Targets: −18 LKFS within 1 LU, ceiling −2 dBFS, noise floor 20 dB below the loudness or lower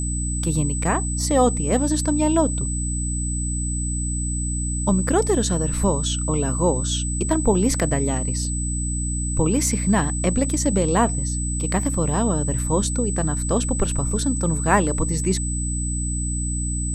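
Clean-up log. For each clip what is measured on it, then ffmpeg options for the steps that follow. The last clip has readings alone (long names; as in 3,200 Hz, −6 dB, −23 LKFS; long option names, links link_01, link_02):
mains hum 60 Hz; hum harmonics up to 300 Hz; level of the hum −23 dBFS; interfering tone 8,000 Hz; level of the tone −28 dBFS; integrated loudness −22.0 LKFS; sample peak −4.0 dBFS; target loudness −18.0 LKFS
→ -af "bandreject=frequency=60:width_type=h:width=4,bandreject=frequency=120:width_type=h:width=4,bandreject=frequency=180:width_type=h:width=4,bandreject=frequency=240:width_type=h:width=4,bandreject=frequency=300:width_type=h:width=4"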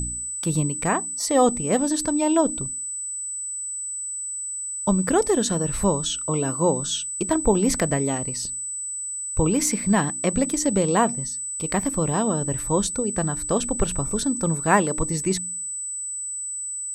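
mains hum none found; interfering tone 8,000 Hz; level of the tone −28 dBFS
→ -af "bandreject=frequency=8000:width=30"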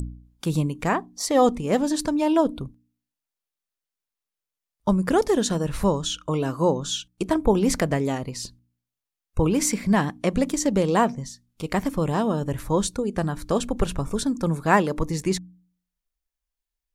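interfering tone none found; integrated loudness −24.0 LKFS; sample peak −4.5 dBFS; target loudness −18.0 LKFS
→ -af "volume=6dB,alimiter=limit=-2dB:level=0:latency=1"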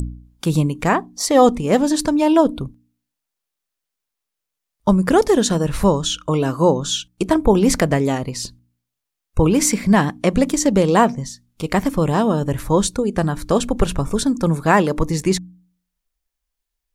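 integrated loudness −18.0 LKFS; sample peak −2.0 dBFS; background noise floor −82 dBFS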